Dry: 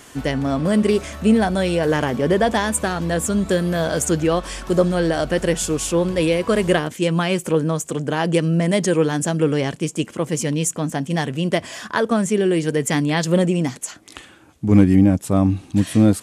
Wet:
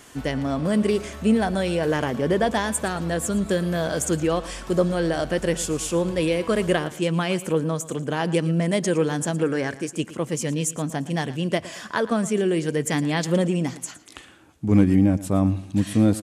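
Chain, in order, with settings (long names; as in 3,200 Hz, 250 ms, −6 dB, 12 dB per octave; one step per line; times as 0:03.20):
0:09.43–0:09.96: thirty-one-band graphic EQ 160 Hz −11 dB, 1,600 Hz +10 dB, 3,150 Hz −8 dB
on a send: repeating echo 114 ms, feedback 31%, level −17 dB
on the sum: level −4 dB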